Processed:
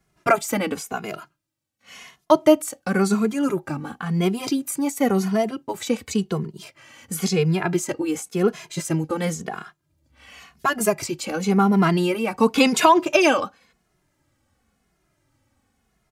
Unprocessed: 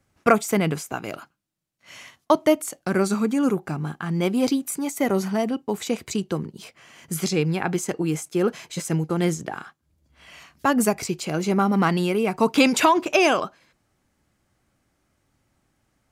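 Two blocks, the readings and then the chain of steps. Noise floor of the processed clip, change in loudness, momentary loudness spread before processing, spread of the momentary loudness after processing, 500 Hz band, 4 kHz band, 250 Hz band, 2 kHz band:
−71 dBFS, +1.0 dB, 12 LU, 14 LU, +1.5 dB, +1.0 dB, +1.0 dB, +1.0 dB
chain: barber-pole flanger 2.4 ms −0.94 Hz
level +4 dB

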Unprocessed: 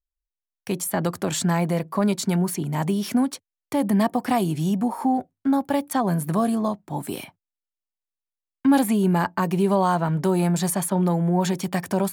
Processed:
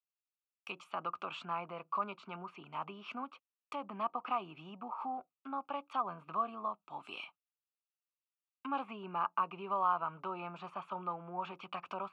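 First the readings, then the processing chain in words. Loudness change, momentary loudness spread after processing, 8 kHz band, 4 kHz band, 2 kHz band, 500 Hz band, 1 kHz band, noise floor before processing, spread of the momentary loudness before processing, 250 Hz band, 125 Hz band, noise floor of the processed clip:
−16.5 dB, 11 LU, below −40 dB, −15.5 dB, −14.0 dB, −19.5 dB, −9.0 dB, below −85 dBFS, 7 LU, −27.5 dB, −30.0 dB, below −85 dBFS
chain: treble cut that deepens with the level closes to 1,800 Hz, closed at −20.5 dBFS
pair of resonant band-passes 1,800 Hz, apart 1.1 octaves
level +1.5 dB

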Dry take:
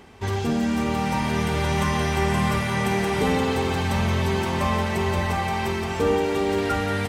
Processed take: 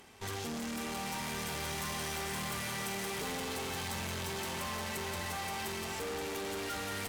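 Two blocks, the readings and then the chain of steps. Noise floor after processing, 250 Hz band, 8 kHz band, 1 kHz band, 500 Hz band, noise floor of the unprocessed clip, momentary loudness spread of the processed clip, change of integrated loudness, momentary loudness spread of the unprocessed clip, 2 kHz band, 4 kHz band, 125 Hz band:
−39 dBFS, −17.5 dB, −2.5 dB, −14.0 dB, −16.5 dB, −27 dBFS, 2 LU, −13.5 dB, 3 LU, −11.0 dB, −7.5 dB, −19.5 dB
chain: spectral tilt +1.5 dB per octave
tube saturation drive 33 dB, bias 0.75
high-shelf EQ 6,100 Hz +7.5 dB
level −4 dB

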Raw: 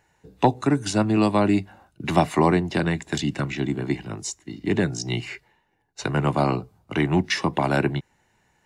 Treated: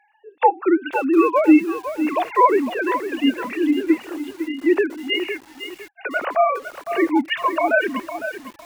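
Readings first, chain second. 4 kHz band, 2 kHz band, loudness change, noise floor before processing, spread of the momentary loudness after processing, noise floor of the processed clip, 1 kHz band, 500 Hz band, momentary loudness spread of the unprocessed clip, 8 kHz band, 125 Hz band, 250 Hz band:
+2.5 dB, +6.0 dB, +4.0 dB, −67 dBFS, 13 LU, −55 dBFS, +6.0 dB, +5.0 dB, 12 LU, below −10 dB, below −25 dB, +4.0 dB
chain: three sine waves on the formant tracks
high-pass filter 420 Hz 6 dB per octave
harmonic and percussive parts rebalanced harmonic +8 dB
feedback echo at a low word length 506 ms, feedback 35%, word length 6 bits, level −9.5 dB

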